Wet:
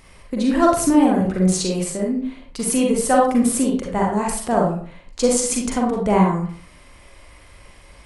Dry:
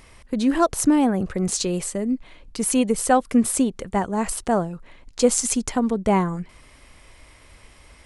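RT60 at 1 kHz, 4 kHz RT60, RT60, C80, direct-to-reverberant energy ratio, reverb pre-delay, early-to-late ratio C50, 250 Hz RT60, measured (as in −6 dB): 0.45 s, 0.30 s, 0.45 s, 8.5 dB, −2.0 dB, 36 ms, 2.0 dB, 0.50 s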